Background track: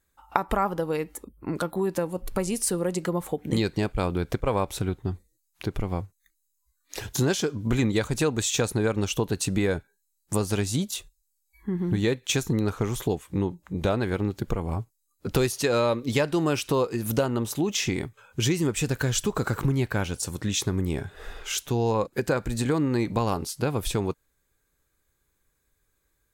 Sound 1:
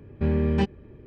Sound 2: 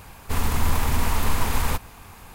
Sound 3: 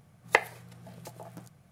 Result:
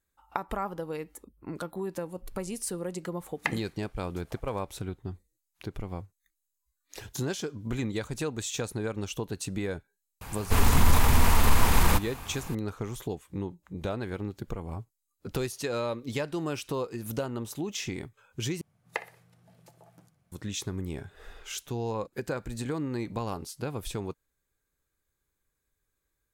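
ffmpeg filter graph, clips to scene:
-filter_complex "[3:a]asplit=2[a][b];[0:a]volume=-8dB[c];[a]highpass=870[d];[2:a]acontrast=57[e];[b]aecho=1:1:61|122|183:0.141|0.0494|0.0173[f];[c]asplit=2[g][h];[g]atrim=end=18.614[i];[f]atrim=end=1.71,asetpts=PTS-STARTPTS,volume=-11dB[j];[h]atrim=start=20.316[k];[d]atrim=end=1.71,asetpts=PTS-STARTPTS,volume=-6dB,afade=t=in:d=0.004:c=hsin,afade=t=out:st=1.706:d=0.004:c=hsin,adelay=3110[l];[e]atrim=end=2.34,asetpts=PTS-STARTPTS,volume=-4dB,afade=t=in:d=0.004:c=hsin,afade=t=out:st=2.336:d=0.004:c=hsin,adelay=10210[m];[i][j]acrossfade=d=0.004:c1=hsin:c2=hsin[n];[n][k]acrossfade=d=0.004:c1=hsin:c2=hsin[o];[o][l][m]amix=inputs=3:normalize=0"

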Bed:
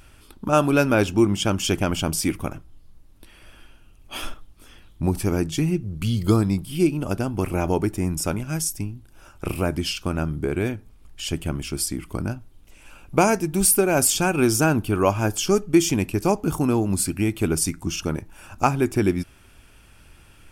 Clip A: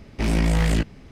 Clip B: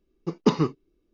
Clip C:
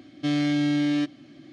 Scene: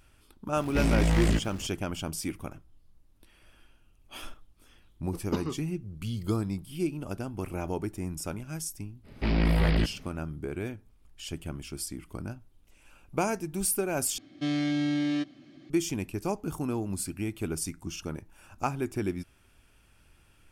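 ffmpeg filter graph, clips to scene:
-filter_complex "[1:a]asplit=2[a][b];[0:a]volume=-10.5dB[c];[a]aeval=exprs='val(0)+0.5*0.0119*sgn(val(0))':c=same[d];[b]aresample=11025,aresample=44100[e];[c]asplit=2[f][g];[f]atrim=end=14.184[h];[3:a]atrim=end=1.52,asetpts=PTS-STARTPTS,volume=-4.5dB[i];[g]atrim=start=15.696[j];[d]atrim=end=1.11,asetpts=PTS-STARTPTS,volume=-4.5dB,afade=t=in:d=0.004:c=hsin,afade=t=out:st=1.106:d=0.004:c=hsin,adelay=560[k];[2:a]atrim=end=1.13,asetpts=PTS-STARTPTS,volume=-11dB,afade=t=in:d=0.004:c=hsin,afade=t=out:st=1.126:d=0.004:c=hsin,adelay=4860[l];[e]atrim=end=1.11,asetpts=PTS-STARTPTS,volume=-4dB,afade=t=in:d=0.05,afade=t=out:st=1.06:d=0.05,adelay=9030[m];[h][i]acrossfade=d=0.004:c1=hsin:c2=hsin[n];[n][j]acrossfade=d=0.004:c1=hsin:c2=hsin[o];[o][k][l][m]amix=inputs=4:normalize=0"

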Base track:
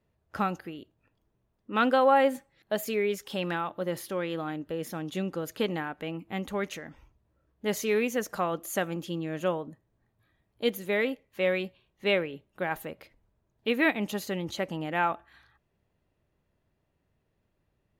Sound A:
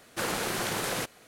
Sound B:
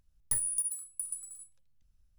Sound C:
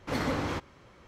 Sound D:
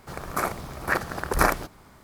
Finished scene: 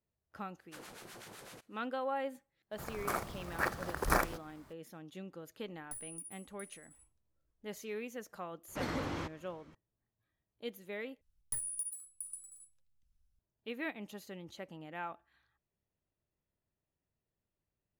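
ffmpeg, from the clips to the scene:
-filter_complex "[2:a]asplit=2[a][b];[0:a]volume=-15dB[c];[1:a]acrossover=split=900[d][e];[d]aeval=exprs='val(0)*(1-0.7/2+0.7/2*cos(2*PI*7.9*n/s))':c=same[f];[e]aeval=exprs='val(0)*(1-0.7/2-0.7/2*cos(2*PI*7.9*n/s))':c=same[g];[f][g]amix=inputs=2:normalize=0[h];[4:a]acrusher=bits=5:mode=log:mix=0:aa=0.000001[i];[c]asplit=2[j][k];[j]atrim=end=11.214[l];[b]atrim=end=2.18,asetpts=PTS-STARTPTS,volume=-7.5dB[m];[k]atrim=start=13.386[n];[h]atrim=end=1.27,asetpts=PTS-STARTPTS,volume=-17.5dB,afade=t=in:d=0.05,afade=t=out:st=1.22:d=0.05,adelay=550[o];[i]atrim=end=2.03,asetpts=PTS-STARTPTS,volume=-9dB,afade=t=in:d=0.02,afade=t=out:st=2.01:d=0.02,adelay=2710[p];[a]atrim=end=2.18,asetpts=PTS-STARTPTS,volume=-15.5dB,afade=t=in:d=0.004:c=hsin,afade=t=out:st=2.176:d=0.004:c=hsin,adelay=5600[q];[3:a]atrim=end=1.07,asetpts=PTS-STARTPTS,volume=-7dB,afade=t=in:d=0.004:c=hsin,afade=t=out:st=1.066:d=0.004:c=hsin,adelay=8680[r];[l][m]acrossfade=d=0.004:c1=hsin:c2=hsin[s];[s][n]acrossfade=d=0.004:c1=hsin:c2=hsin[t];[t][o][p][q][r]amix=inputs=5:normalize=0"

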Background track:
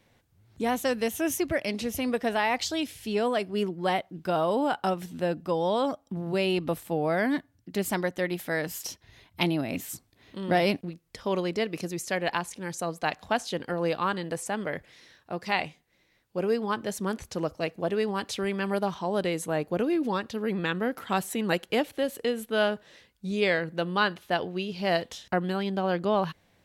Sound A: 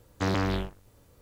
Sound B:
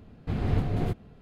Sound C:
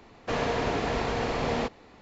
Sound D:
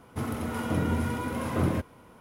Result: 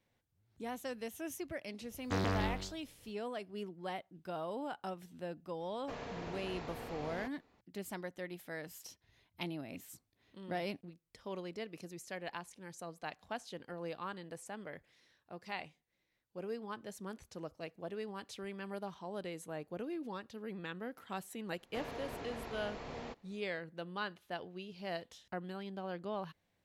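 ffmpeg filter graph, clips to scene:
-filter_complex "[3:a]asplit=2[a][b];[0:a]volume=-15dB[c];[1:a]asplit=2[d][e];[e]adelay=163.3,volume=-11dB,highshelf=f=4k:g=-3.67[f];[d][f]amix=inputs=2:normalize=0,atrim=end=1.21,asetpts=PTS-STARTPTS,volume=-7dB,afade=t=in:d=0.004:c=hsin,afade=t=out:st=1.206:d=0.004:c=hsin,adelay=1900[g];[a]atrim=end=2.01,asetpts=PTS-STARTPTS,volume=-17dB,afade=t=in:d=0.004:c=hsin,afade=t=out:st=2.006:d=0.004:c=hsin,adelay=5600[h];[b]atrim=end=2.01,asetpts=PTS-STARTPTS,volume=-17dB,afade=t=in:d=0.004:c=hsin,afade=t=out:st=2.006:d=0.004:c=hsin,adelay=21460[i];[c][g][h][i]amix=inputs=4:normalize=0"

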